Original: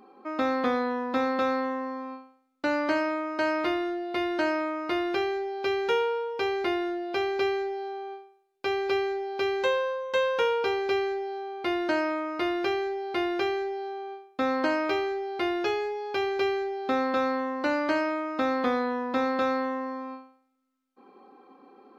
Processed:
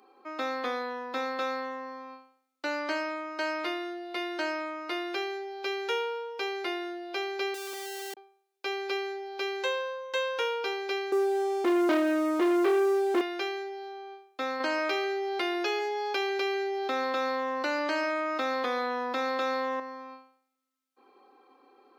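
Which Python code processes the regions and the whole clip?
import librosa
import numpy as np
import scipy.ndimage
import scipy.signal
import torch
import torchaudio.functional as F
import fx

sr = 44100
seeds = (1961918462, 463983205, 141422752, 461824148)

y = fx.chain(x, sr, fx.lowpass(hz=2600.0, slope=12),
    fx.schmitt(flips_db=-34.5), at=(7.54, 8.17))
y = fx.chain(y, sr, fx.lowpass(hz=2000.0, slope=12),
    fx.tilt_shelf(db=10.0, hz=660.0),
    fx.leveller(passes=3), at=(11.12, 13.21))
y = fx.chain(y, sr, fx.echo_single(ms=143, db=-17.0),
    fx.env_flatten(amount_pct=70), at=(14.6, 19.8))
y = scipy.signal.sosfilt(scipy.signal.butter(4, 290.0, 'highpass', fs=sr, output='sos'), y)
y = fx.high_shelf(y, sr, hz=2000.0, db=9.0)
y = F.gain(torch.from_numpy(y), -6.5).numpy()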